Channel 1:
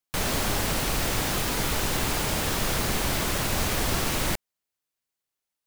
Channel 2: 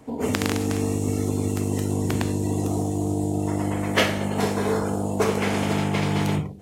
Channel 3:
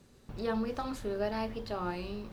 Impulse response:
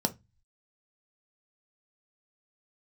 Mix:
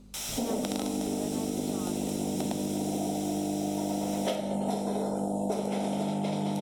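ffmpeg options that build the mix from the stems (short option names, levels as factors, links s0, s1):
-filter_complex "[0:a]bandpass=f=6900:t=q:w=0.57:csg=0,aeval=exprs='val(0)+0.00398*(sin(2*PI*50*n/s)+sin(2*PI*2*50*n/s)/2+sin(2*PI*3*50*n/s)/3+sin(2*PI*4*50*n/s)/4+sin(2*PI*5*50*n/s)/5)':c=same,volume=0.562,asplit=2[s0][s1];[s1]volume=0.316[s2];[1:a]equalizer=f=630:t=o:w=0.67:g=11,equalizer=f=4000:t=o:w=0.67:g=8,equalizer=f=10000:t=o:w=0.67:g=11,adelay=300,volume=0.376,asplit=2[s3][s4];[s4]volume=0.501[s5];[2:a]volume=1.06[s6];[3:a]atrim=start_sample=2205[s7];[s2][s5]amix=inputs=2:normalize=0[s8];[s8][s7]afir=irnorm=-1:irlink=0[s9];[s0][s3][s6][s9]amix=inputs=4:normalize=0,equalizer=f=1700:t=o:w=0.35:g=-10.5,acompressor=threshold=0.0398:ratio=6"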